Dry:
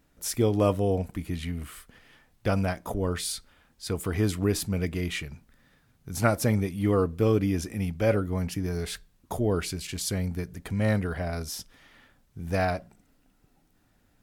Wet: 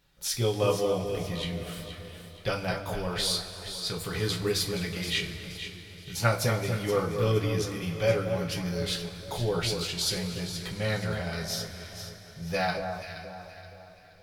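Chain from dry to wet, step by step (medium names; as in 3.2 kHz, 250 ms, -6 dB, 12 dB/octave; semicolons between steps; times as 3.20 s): graphic EQ 250/4000/8000 Hz -10/+11/-3 dB; echo whose repeats swap between lows and highs 237 ms, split 1.4 kHz, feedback 59%, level -5.5 dB; two-slope reverb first 0.22 s, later 4.3 s, from -21 dB, DRR 0 dB; trim -3.5 dB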